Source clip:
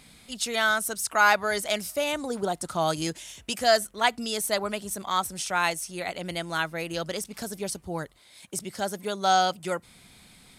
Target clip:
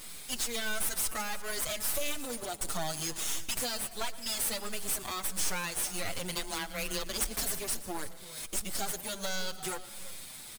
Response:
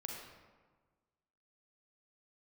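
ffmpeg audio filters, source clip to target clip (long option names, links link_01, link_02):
-filter_complex "[0:a]acompressor=threshold=-33dB:ratio=12,crystalizer=i=4:c=0,aeval=exprs='max(val(0),0)':channel_layout=same,acrusher=bits=3:mode=log:mix=0:aa=0.000001,asplit=3[link_01][link_02][link_03];[link_01]afade=type=out:start_time=6.34:duration=0.02[link_04];[link_02]afreqshift=16,afade=type=in:start_time=6.34:duration=0.02,afade=type=out:start_time=7.44:duration=0.02[link_05];[link_03]afade=type=in:start_time=7.44:duration=0.02[link_06];[link_04][link_05][link_06]amix=inputs=3:normalize=0,asoftclip=type=hard:threshold=-25.5dB,aecho=1:1:344:0.141,asplit=2[link_07][link_08];[1:a]atrim=start_sample=2205,adelay=117[link_09];[link_08][link_09]afir=irnorm=-1:irlink=0,volume=-14dB[link_10];[link_07][link_10]amix=inputs=2:normalize=0,asplit=2[link_11][link_12];[link_12]adelay=6.8,afreqshift=-1.5[link_13];[link_11][link_13]amix=inputs=2:normalize=1,volume=5dB"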